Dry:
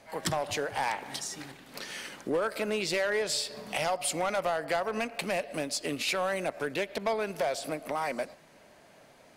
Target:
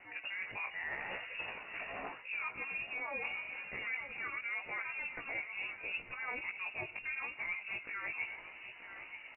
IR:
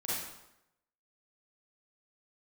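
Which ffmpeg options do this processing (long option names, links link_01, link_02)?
-filter_complex "[0:a]asetrate=57191,aresample=44100,atempo=0.771105,aeval=exprs='val(0)+0.000631*(sin(2*PI*50*n/s)+sin(2*PI*2*50*n/s)/2+sin(2*PI*3*50*n/s)/3+sin(2*PI*4*50*n/s)/4+sin(2*PI*5*50*n/s)/5)':channel_layout=same,highpass=frequency=140:poles=1,lowpass=frequency=2600:width_type=q:width=0.5098,lowpass=frequency=2600:width_type=q:width=0.6013,lowpass=frequency=2600:width_type=q:width=0.9,lowpass=frequency=2600:width_type=q:width=2.563,afreqshift=-3000,acrossover=split=2200[link_01][link_02];[link_01]aeval=exprs='val(0)*(1-0.7/2+0.7/2*cos(2*PI*1.9*n/s))':channel_layout=same[link_03];[link_02]aeval=exprs='val(0)*(1-0.7/2-0.7/2*cos(2*PI*1.9*n/s))':channel_layout=same[link_04];[link_03][link_04]amix=inputs=2:normalize=0,areverse,acompressor=threshold=-46dB:ratio=10,areverse,aecho=1:1:932|1864|2796|3728:0.282|0.0986|0.0345|0.0121,flanger=delay=16:depth=3.2:speed=0.8,volume=11dB"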